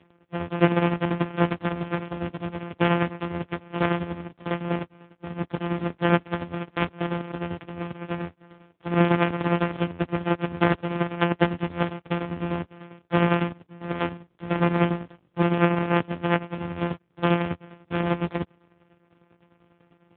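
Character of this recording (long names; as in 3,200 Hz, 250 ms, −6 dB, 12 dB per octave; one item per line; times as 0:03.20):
a buzz of ramps at a fixed pitch in blocks of 256 samples
tremolo saw down 10 Hz, depth 70%
AMR narrowband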